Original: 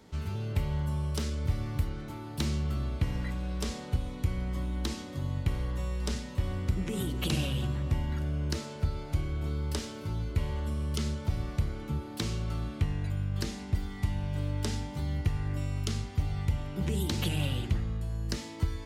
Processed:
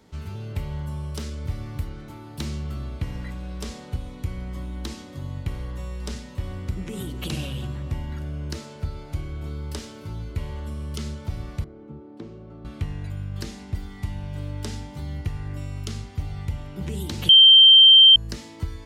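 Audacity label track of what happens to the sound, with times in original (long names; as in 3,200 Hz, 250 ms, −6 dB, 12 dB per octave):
11.640000	12.650000	resonant band-pass 370 Hz, Q 1.1
17.290000	18.160000	beep over 3,140 Hz −7.5 dBFS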